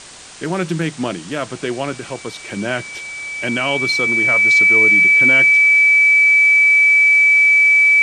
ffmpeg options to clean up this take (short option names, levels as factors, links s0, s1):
-af "bandreject=f=2300:w=30,afftdn=nr=27:nf=-34"